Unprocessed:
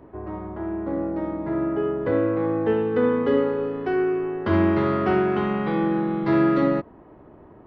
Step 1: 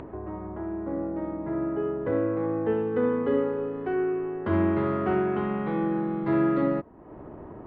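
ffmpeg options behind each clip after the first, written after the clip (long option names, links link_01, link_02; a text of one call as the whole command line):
ffmpeg -i in.wav -af "lowpass=3900,aemphasis=mode=reproduction:type=75kf,acompressor=mode=upward:threshold=-27dB:ratio=2.5,volume=-4dB" out.wav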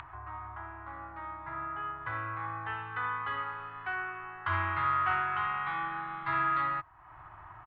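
ffmpeg -i in.wav -af "firequalizer=gain_entry='entry(120,0);entry(220,-29);entry(320,-17);entry(470,-25);entry(740,2);entry(1200,14);entry(1800,12);entry(3500,12);entry(5500,6)':delay=0.05:min_phase=1,volume=-6.5dB" out.wav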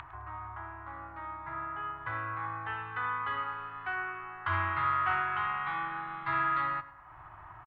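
ffmpeg -i in.wav -filter_complex "[0:a]asplit=2[link_01][link_02];[link_02]adelay=105,lowpass=frequency=2800:poles=1,volume=-15.5dB,asplit=2[link_03][link_04];[link_04]adelay=105,lowpass=frequency=2800:poles=1,volume=0.54,asplit=2[link_05][link_06];[link_06]adelay=105,lowpass=frequency=2800:poles=1,volume=0.54,asplit=2[link_07][link_08];[link_08]adelay=105,lowpass=frequency=2800:poles=1,volume=0.54,asplit=2[link_09][link_10];[link_10]adelay=105,lowpass=frequency=2800:poles=1,volume=0.54[link_11];[link_01][link_03][link_05][link_07][link_09][link_11]amix=inputs=6:normalize=0" out.wav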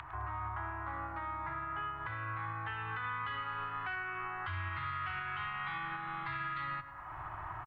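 ffmpeg -i in.wav -filter_complex "[0:a]acrossover=split=190|2000[link_01][link_02][link_03];[link_02]acompressor=threshold=-43dB:ratio=6[link_04];[link_01][link_04][link_03]amix=inputs=3:normalize=0,alimiter=level_in=12.5dB:limit=-24dB:level=0:latency=1:release=244,volume=-12.5dB,volume=6.5dB" out.wav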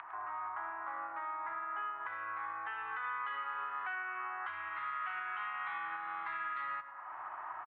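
ffmpeg -i in.wav -af "highpass=610,lowpass=2100,volume=1dB" out.wav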